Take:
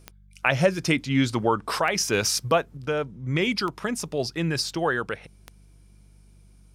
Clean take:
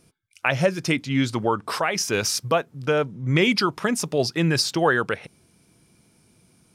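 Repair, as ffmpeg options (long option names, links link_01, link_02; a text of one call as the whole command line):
ffmpeg -i in.wav -af "adeclick=threshold=4,bandreject=frequency=49.3:width_type=h:width=4,bandreject=frequency=98.6:width_type=h:width=4,bandreject=frequency=147.9:width_type=h:width=4,bandreject=frequency=197.2:width_type=h:width=4,asetnsamples=nb_out_samples=441:pad=0,asendcmd='2.77 volume volume 5dB',volume=0dB" out.wav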